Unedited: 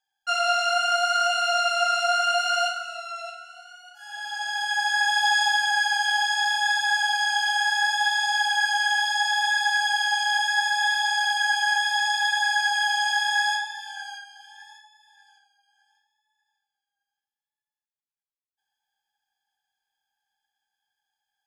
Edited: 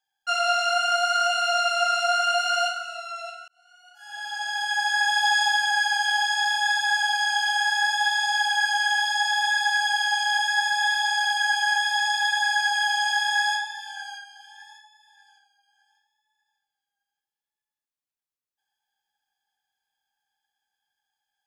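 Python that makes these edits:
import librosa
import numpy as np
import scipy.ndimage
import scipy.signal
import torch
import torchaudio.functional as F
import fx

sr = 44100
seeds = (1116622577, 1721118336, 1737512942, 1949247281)

y = fx.edit(x, sr, fx.fade_in_span(start_s=3.48, length_s=0.71), tone=tone)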